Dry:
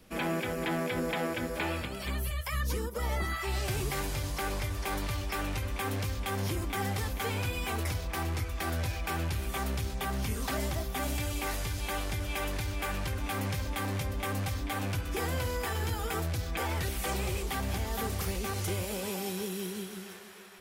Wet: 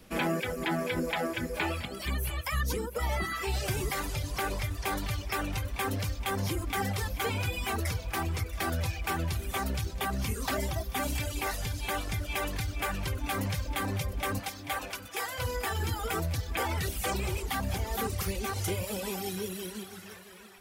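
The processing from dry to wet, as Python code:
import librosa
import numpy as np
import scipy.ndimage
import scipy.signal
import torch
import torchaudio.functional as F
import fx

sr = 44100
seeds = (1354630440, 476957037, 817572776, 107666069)

p1 = fx.dereverb_blind(x, sr, rt60_s=1.8)
p2 = fx.highpass(p1, sr, hz=fx.line((14.38, 320.0), (15.38, 860.0)), slope=12, at=(14.38, 15.38), fade=0.02)
p3 = p2 + fx.echo_feedback(p2, sr, ms=675, feedback_pct=31, wet_db=-15.5, dry=0)
y = F.gain(torch.from_numpy(p3), 3.5).numpy()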